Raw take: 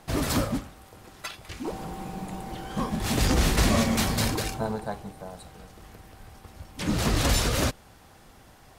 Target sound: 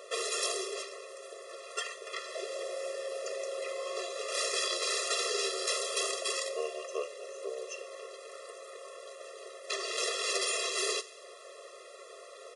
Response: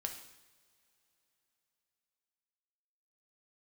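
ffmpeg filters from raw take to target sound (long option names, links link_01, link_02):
-filter_complex "[0:a]asetrate=30870,aresample=44100,acrossover=split=250|1600|4000[link_01][link_02][link_03][link_04];[link_01]acompressor=threshold=-34dB:ratio=4[link_05];[link_02]acompressor=threshold=-44dB:ratio=4[link_06];[link_03]acompressor=threshold=-47dB:ratio=4[link_07];[link_04]acompressor=threshold=-38dB:ratio=4[link_08];[link_05][link_06][link_07][link_08]amix=inputs=4:normalize=0,asplit=2[link_09][link_10];[1:a]atrim=start_sample=2205,asetrate=40131,aresample=44100[link_11];[link_10][link_11]afir=irnorm=-1:irlink=0,volume=-5dB[link_12];[link_09][link_12]amix=inputs=2:normalize=0,afftfilt=real='re*eq(mod(floor(b*sr/1024/350),2),1)':imag='im*eq(mod(floor(b*sr/1024/350),2),1)':win_size=1024:overlap=0.75,volume=5dB"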